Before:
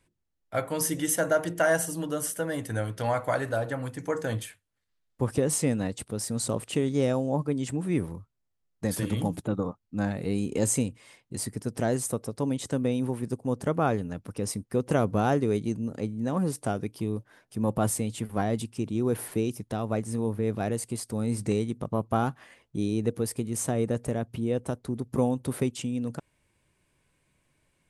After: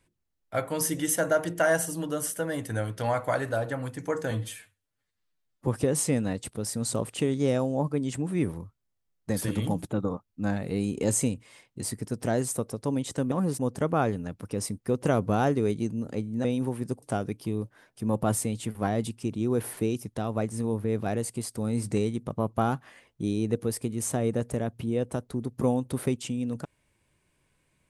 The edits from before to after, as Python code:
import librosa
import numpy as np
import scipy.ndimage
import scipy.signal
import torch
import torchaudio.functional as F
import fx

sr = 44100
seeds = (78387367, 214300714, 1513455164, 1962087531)

y = fx.edit(x, sr, fx.stretch_span(start_s=4.31, length_s=0.91, factor=1.5),
    fx.swap(start_s=12.86, length_s=0.58, other_s=16.3, other_length_s=0.27), tone=tone)